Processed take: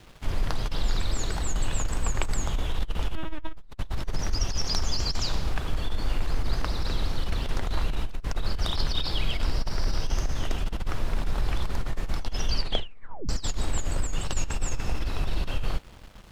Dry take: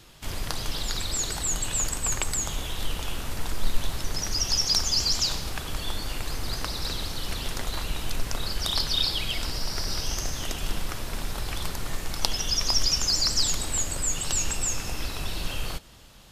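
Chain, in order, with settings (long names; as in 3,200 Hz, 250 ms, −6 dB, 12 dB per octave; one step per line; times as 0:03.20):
0:03.15–0:03.57: linear-prediction vocoder at 8 kHz pitch kept
bit reduction 8 bits
low-pass filter 1,800 Hz 6 dB per octave
low-shelf EQ 62 Hz +7 dB
compressor whose output falls as the input rises −22 dBFS, ratio −0.5
0:12.47: tape stop 0.82 s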